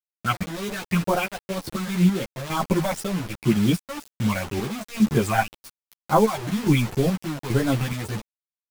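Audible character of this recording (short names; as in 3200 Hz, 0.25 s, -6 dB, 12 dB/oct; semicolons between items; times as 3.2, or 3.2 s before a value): chopped level 1.2 Hz, depth 65%, duty 50%; phasing stages 8, 2 Hz, lowest notch 350–2700 Hz; a quantiser's noise floor 6-bit, dither none; a shimmering, thickened sound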